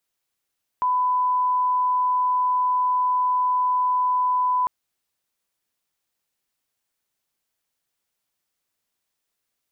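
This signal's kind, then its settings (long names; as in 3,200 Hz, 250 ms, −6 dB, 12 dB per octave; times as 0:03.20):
line-up tone −18 dBFS 3.85 s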